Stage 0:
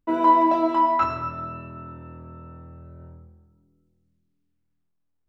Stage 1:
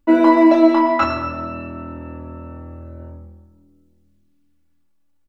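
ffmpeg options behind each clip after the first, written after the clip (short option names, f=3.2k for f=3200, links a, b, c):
-af "aecho=1:1:3.5:0.89,volume=7.5dB"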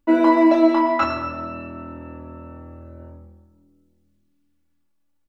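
-af "lowshelf=f=150:g=-4,volume=-2.5dB"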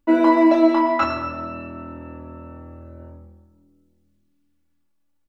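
-af anull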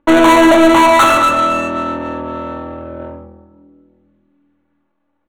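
-filter_complex "[0:a]asplit=2[a][b];[b]highpass=f=720:p=1,volume=25dB,asoftclip=type=tanh:threshold=-4dB[c];[a][c]amix=inputs=2:normalize=0,lowpass=f=4.7k:p=1,volume=-6dB,adynamicsmooth=sensitivity=1.5:basefreq=1.3k,asuperstop=centerf=5000:order=4:qfactor=3,volume=3dB"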